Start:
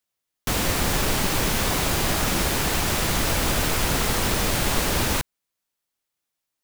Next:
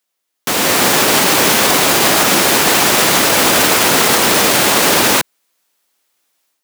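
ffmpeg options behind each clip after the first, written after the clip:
-af "highpass=260,dynaudnorm=f=540:g=3:m=10dB,alimiter=level_in=9dB:limit=-1dB:release=50:level=0:latency=1,volume=-1dB"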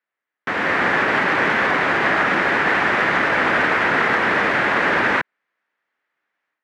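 -af "lowpass=f=1.8k:t=q:w=2.9,volume=-7.5dB"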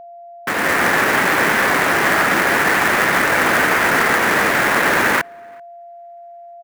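-filter_complex "[0:a]acrusher=bits=2:mode=log:mix=0:aa=0.000001,aeval=exprs='val(0)+0.0141*sin(2*PI*690*n/s)':c=same,asplit=2[a][b];[b]adelay=384.8,volume=-30dB,highshelf=f=4k:g=-8.66[c];[a][c]amix=inputs=2:normalize=0,volume=2dB"

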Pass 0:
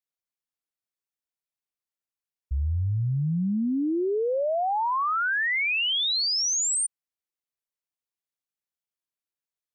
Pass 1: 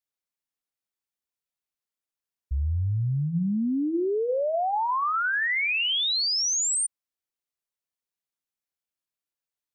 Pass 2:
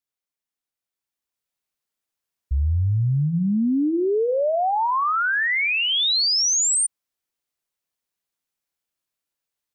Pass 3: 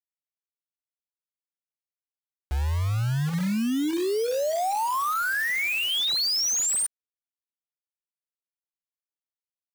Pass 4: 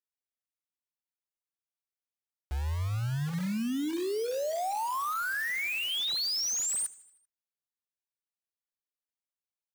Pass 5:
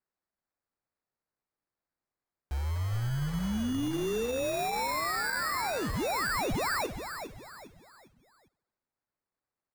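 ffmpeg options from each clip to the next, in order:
-af "bandreject=f=157.8:t=h:w=4,bandreject=f=315.6:t=h:w=4,bandreject=f=473.4:t=h:w=4,bandreject=f=631.2:t=h:w=4,bandreject=f=789:t=h:w=4,bandreject=f=946.8:t=h:w=4,bandreject=f=1.1046k:t=h:w=4,bandreject=f=1.2624k:t=h:w=4,bandreject=f=1.4202k:t=h:w=4,bandreject=f=1.578k:t=h:w=4,bandreject=f=1.7358k:t=h:w=4,bandreject=f=1.8936k:t=h:w=4,bandreject=f=2.0514k:t=h:w=4,bandreject=f=2.2092k:t=h:w=4,bandreject=f=2.367k:t=h:w=4,bandreject=f=2.5248k:t=h:w=4,bandreject=f=2.6826k:t=h:w=4,bandreject=f=2.8404k:t=h:w=4,bandreject=f=2.9982k:t=h:w=4"
-af "alimiter=limit=-23dB:level=0:latency=1:release=119,dynaudnorm=f=810:g=3:m=6dB"
-af "acrusher=bits=4:mix=0:aa=0.000001,volume=-5dB"
-af "aecho=1:1:78|156|234|312|390:0.0944|0.0548|0.0318|0.0184|0.0107,volume=-6dB"
-filter_complex "[0:a]acrusher=samples=14:mix=1:aa=0.000001,asplit=5[a][b][c][d][e];[b]adelay=404,afreqshift=-64,volume=-9dB[f];[c]adelay=808,afreqshift=-128,volume=-17.6dB[g];[d]adelay=1212,afreqshift=-192,volume=-26.3dB[h];[e]adelay=1616,afreqshift=-256,volume=-34.9dB[i];[a][f][g][h][i]amix=inputs=5:normalize=0"

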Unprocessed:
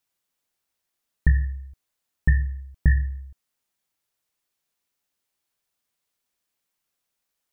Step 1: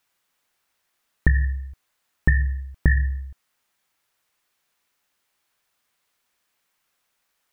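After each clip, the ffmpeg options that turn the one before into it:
-af "equalizer=f=1.5k:t=o:w=2.4:g=7,acompressor=threshold=-18dB:ratio=6,volume=5dB"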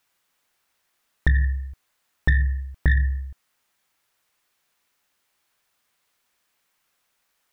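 -af "asoftclip=type=tanh:threshold=-11dB,volume=1.5dB"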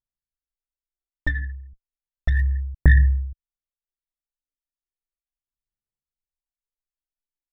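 -af "aphaser=in_gain=1:out_gain=1:delay=3.5:decay=0.75:speed=0.34:type=sinusoidal,anlmdn=2.51,volume=-6.5dB"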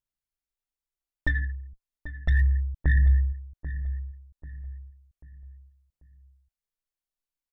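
-filter_complex "[0:a]alimiter=limit=-15dB:level=0:latency=1:release=10,asplit=2[a][b];[b]adelay=789,lowpass=f=1.6k:p=1,volume=-12dB,asplit=2[c][d];[d]adelay=789,lowpass=f=1.6k:p=1,volume=0.4,asplit=2[e][f];[f]adelay=789,lowpass=f=1.6k:p=1,volume=0.4,asplit=2[g][h];[h]adelay=789,lowpass=f=1.6k:p=1,volume=0.4[i];[a][c][e][g][i]amix=inputs=5:normalize=0"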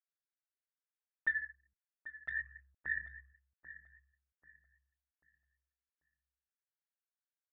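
-af "bandpass=f=1.6k:t=q:w=3.7:csg=0,volume=-1dB"

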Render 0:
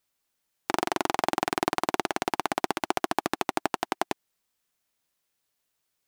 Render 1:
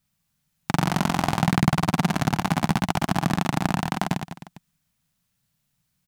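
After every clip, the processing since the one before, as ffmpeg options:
-filter_complex "[0:a]lowshelf=f=250:t=q:w=3:g=13.5,asplit=2[a][b];[b]aecho=0:1:50|115|199.5|309.4|452.2:0.631|0.398|0.251|0.158|0.1[c];[a][c]amix=inputs=2:normalize=0,volume=1dB"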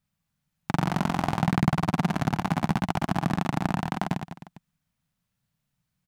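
-af "highshelf=f=3.1k:g=-8,volume=-2.5dB"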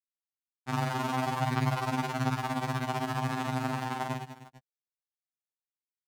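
-af "acrusher=bits=7:mix=0:aa=0.5,bass=f=250:g=-3,treble=f=4k:g=1,afftfilt=real='re*2.45*eq(mod(b,6),0)':imag='im*2.45*eq(mod(b,6),0)':win_size=2048:overlap=0.75"

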